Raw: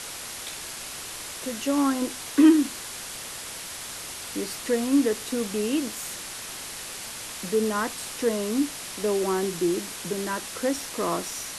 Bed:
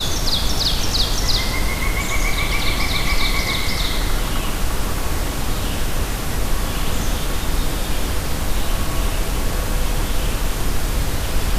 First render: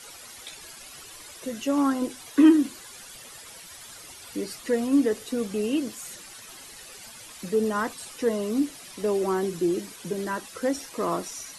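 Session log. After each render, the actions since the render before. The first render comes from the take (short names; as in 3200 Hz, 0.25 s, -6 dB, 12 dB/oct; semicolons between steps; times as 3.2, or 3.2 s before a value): denoiser 12 dB, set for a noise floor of -37 dBFS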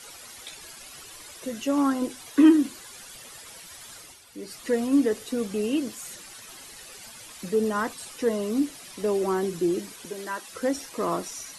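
3.97–4.65 dip -9 dB, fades 0.27 s; 10.05–10.48 HPF 660 Hz 6 dB/oct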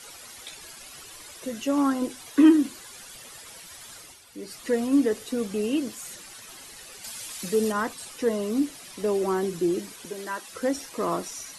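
7.04–7.72 high shelf 2400 Hz +8 dB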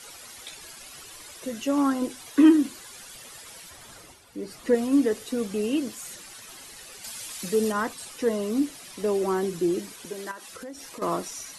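3.7–4.75 tilt shelf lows +4.5 dB, about 1500 Hz; 10.31–11.02 compressor 5:1, threshold -37 dBFS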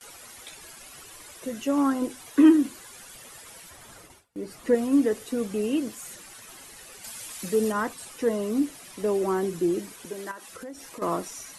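gate with hold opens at -37 dBFS; bell 4400 Hz -4.5 dB 1.3 oct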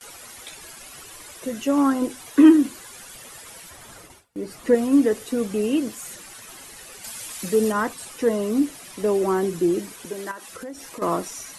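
gain +4 dB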